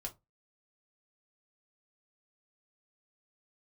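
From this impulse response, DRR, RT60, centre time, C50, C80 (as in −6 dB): 0.5 dB, 0.20 s, 9 ms, 18.5 dB, 29.0 dB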